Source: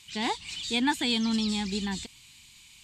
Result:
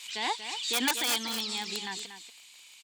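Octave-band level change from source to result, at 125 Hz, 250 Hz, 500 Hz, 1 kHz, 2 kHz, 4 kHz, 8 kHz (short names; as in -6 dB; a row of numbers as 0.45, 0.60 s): under -15 dB, -11.5 dB, -3.5 dB, -1.0 dB, 0.0 dB, +0.5 dB, +5.5 dB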